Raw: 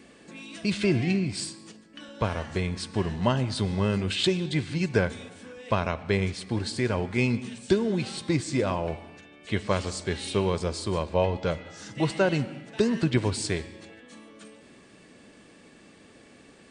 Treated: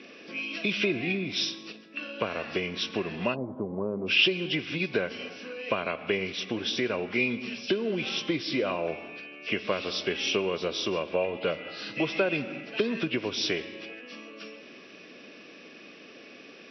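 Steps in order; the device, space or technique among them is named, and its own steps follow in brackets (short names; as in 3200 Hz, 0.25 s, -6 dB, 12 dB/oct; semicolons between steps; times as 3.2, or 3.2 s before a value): 3.34–4.08 Chebyshev low-pass 1000 Hz, order 4; hearing aid with frequency lowering (nonlinear frequency compression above 2200 Hz 1.5:1; compressor 4:1, threshold -28 dBFS, peak gain reduction 10.5 dB; speaker cabinet 290–6800 Hz, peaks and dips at 880 Hz -9 dB, 1800 Hz -4 dB, 2600 Hz +9 dB); gain +6 dB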